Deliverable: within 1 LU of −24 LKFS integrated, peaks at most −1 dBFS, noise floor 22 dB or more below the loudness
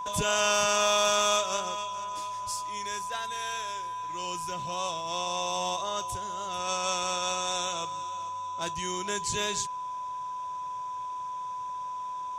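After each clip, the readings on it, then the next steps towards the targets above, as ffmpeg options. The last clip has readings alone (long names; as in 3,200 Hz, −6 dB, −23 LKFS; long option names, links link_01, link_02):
interfering tone 1,000 Hz; level of the tone −33 dBFS; integrated loudness −30.0 LKFS; sample peak −13.5 dBFS; target loudness −24.0 LKFS
→ -af "bandreject=frequency=1000:width=30"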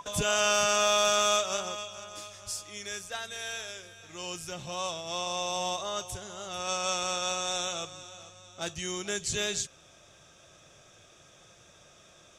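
interfering tone none found; integrated loudness −30.0 LKFS; sample peak −14.0 dBFS; target loudness −24.0 LKFS
→ -af "volume=6dB"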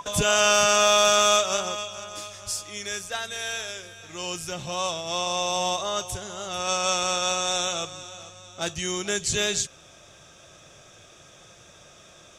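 integrated loudness −24.0 LKFS; sample peak −8.0 dBFS; background noise floor −51 dBFS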